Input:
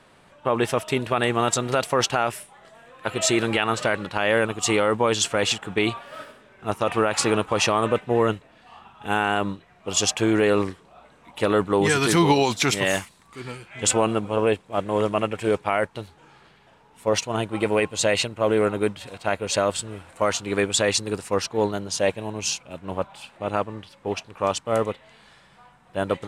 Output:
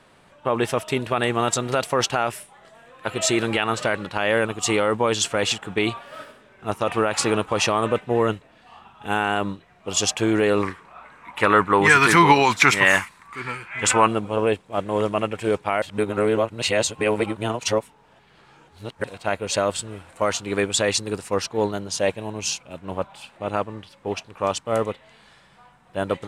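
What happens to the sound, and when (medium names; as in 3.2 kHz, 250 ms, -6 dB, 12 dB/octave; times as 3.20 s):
10.63–14.08 s: high-order bell 1.5 kHz +10.5 dB
15.82–19.04 s: reverse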